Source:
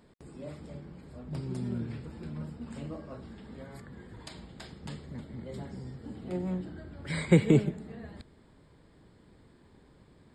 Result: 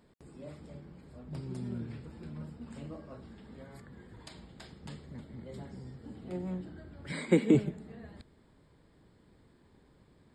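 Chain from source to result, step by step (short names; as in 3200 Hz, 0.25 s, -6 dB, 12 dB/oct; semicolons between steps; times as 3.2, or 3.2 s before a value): 7.12–7.55 resonant low shelf 160 Hz -14 dB, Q 3; gain -4 dB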